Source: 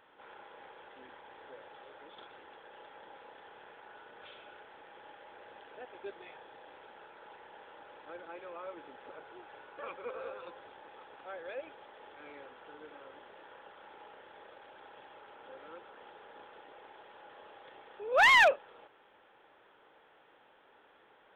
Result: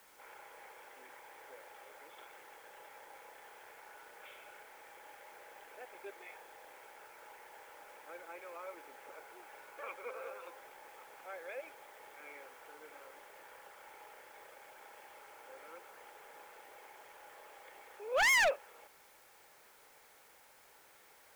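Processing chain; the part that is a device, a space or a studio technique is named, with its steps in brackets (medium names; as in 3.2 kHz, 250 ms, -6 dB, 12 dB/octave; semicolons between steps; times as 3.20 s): drive-through speaker (band-pass 420–2900 Hz; peaking EQ 2.2 kHz +10 dB 0.27 oct; hard clipper -24 dBFS, distortion -6 dB; white noise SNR 21 dB); trim -2 dB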